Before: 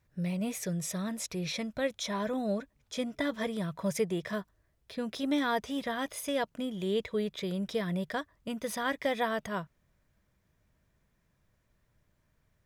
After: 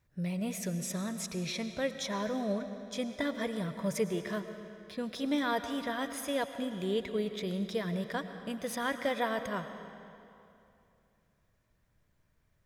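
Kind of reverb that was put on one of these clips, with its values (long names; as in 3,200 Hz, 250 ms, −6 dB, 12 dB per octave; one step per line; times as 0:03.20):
comb and all-pass reverb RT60 2.7 s, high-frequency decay 0.85×, pre-delay 70 ms, DRR 9 dB
level −1.5 dB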